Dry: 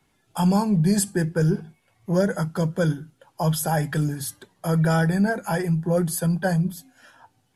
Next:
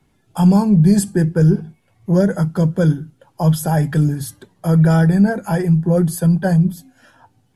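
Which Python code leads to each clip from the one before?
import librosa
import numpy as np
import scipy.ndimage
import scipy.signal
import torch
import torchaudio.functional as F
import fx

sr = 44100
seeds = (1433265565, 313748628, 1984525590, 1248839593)

y = fx.low_shelf(x, sr, hz=470.0, db=9.5)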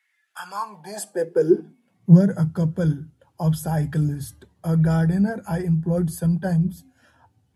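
y = fx.filter_sweep_highpass(x, sr, from_hz=1900.0, to_hz=70.0, start_s=0.23, end_s=2.73, q=7.4)
y = y * 10.0 ** (-8.0 / 20.0)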